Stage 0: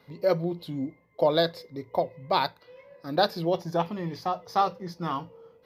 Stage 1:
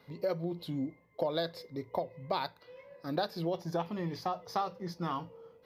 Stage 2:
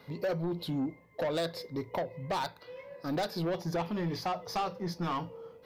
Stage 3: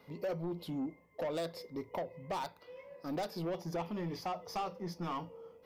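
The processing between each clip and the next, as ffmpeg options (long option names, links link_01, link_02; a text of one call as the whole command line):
ffmpeg -i in.wav -af "acompressor=threshold=-28dB:ratio=4,volume=-2dB" out.wav
ffmpeg -i in.wav -af "asoftclip=type=tanh:threshold=-33dB,volume=6dB" out.wav
ffmpeg -i in.wav -af "equalizer=frequency=125:width_type=o:width=0.33:gain=-10,equalizer=frequency=1600:width_type=o:width=0.33:gain=-6,equalizer=frequency=4000:width_type=o:width=0.33:gain=-7,volume=-4.5dB" out.wav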